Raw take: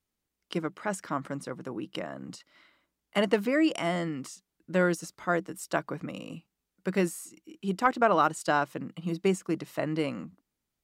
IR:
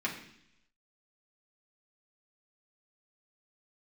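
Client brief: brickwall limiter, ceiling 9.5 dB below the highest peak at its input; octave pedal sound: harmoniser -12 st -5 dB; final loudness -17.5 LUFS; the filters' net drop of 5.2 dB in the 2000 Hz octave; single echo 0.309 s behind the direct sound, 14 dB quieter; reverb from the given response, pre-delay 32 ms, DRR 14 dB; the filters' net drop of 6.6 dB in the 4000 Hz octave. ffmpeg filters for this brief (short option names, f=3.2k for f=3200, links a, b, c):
-filter_complex "[0:a]equalizer=f=2k:t=o:g=-6,equalizer=f=4k:t=o:g=-7,alimiter=limit=-21.5dB:level=0:latency=1,aecho=1:1:309:0.2,asplit=2[a][b];[1:a]atrim=start_sample=2205,adelay=32[c];[b][c]afir=irnorm=-1:irlink=0,volume=-20dB[d];[a][d]amix=inputs=2:normalize=0,asplit=2[e][f];[f]asetrate=22050,aresample=44100,atempo=2,volume=-5dB[g];[e][g]amix=inputs=2:normalize=0,volume=16dB"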